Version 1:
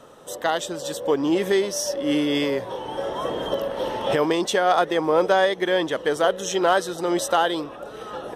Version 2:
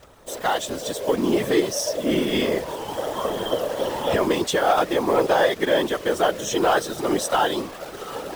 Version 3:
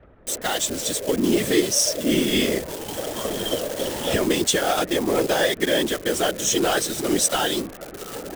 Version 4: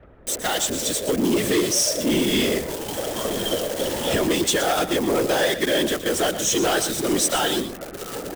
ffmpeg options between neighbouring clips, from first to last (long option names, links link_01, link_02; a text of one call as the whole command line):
ffmpeg -i in.wav -af "acontrast=77,acrusher=bits=6:dc=4:mix=0:aa=0.000001,afftfilt=real='hypot(re,im)*cos(2*PI*random(0))':imag='hypot(re,im)*sin(2*PI*random(1))':win_size=512:overlap=0.75" out.wav
ffmpeg -i in.wav -filter_complex "[0:a]equalizer=frequency=125:width_type=o:width=1:gain=-3,equalizer=frequency=500:width_type=o:width=1:gain=-4,equalizer=frequency=1000:width_type=o:width=1:gain=-12,equalizer=frequency=8000:width_type=o:width=1:gain=6,acrossover=split=130|1900[link_01][link_02][link_03];[link_03]acrusher=bits=5:mix=0:aa=0.000001[link_04];[link_01][link_02][link_04]amix=inputs=3:normalize=0,volume=4dB" out.wav
ffmpeg -i in.wav -filter_complex "[0:a]asoftclip=type=tanh:threshold=-16dB,asplit=2[link_01][link_02];[link_02]aecho=0:1:119:0.266[link_03];[link_01][link_03]amix=inputs=2:normalize=0,volume=2dB" out.wav